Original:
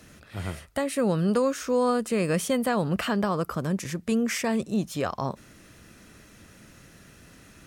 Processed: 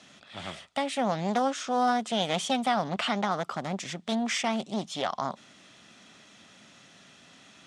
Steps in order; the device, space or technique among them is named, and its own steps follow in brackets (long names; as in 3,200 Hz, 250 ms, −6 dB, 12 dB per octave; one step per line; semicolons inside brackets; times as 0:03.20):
full-range speaker at full volume (highs frequency-modulated by the lows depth 0.55 ms; loudspeaker in its box 240–8,000 Hz, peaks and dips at 330 Hz −7 dB, 470 Hz −8 dB, 750 Hz +4 dB, 1,600 Hz −4 dB, 3,400 Hz +9 dB)